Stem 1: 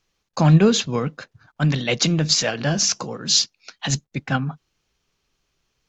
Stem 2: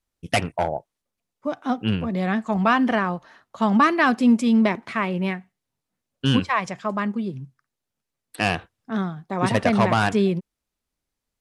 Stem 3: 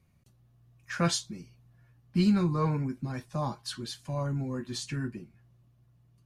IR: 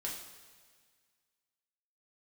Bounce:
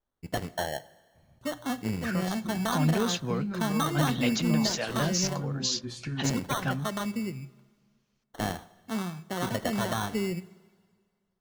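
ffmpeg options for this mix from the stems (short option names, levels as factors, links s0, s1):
-filter_complex "[0:a]adelay=2350,volume=0.422[s0];[1:a]acompressor=threshold=0.0631:ratio=2.5,acrusher=samples=18:mix=1:aa=0.000001,acontrast=83,volume=0.237,asplit=2[s1][s2];[s2]volume=0.237[s3];[2:a]highshelf=f=2700:g=-12,acompressor=threshold=0.0126:ratio=4,adelay=1150,volume=1.41,asplit=2[s4][s5];[s5]volume=0.355[s6];[s0][s4]amix=inputs=2:normalize=0,alimiter=limit=0.119:level=0:latency=1:release=204,volume=1[s7];[3:a]atrim=start_sample=2205[s8];[s3][s6]amix=inputs=2:normalize=0[s9];[s9][s8]afir=irnorm=-1:irlink=0[s10];[s1][s7][s10]amix=inputs=3:normalize=0"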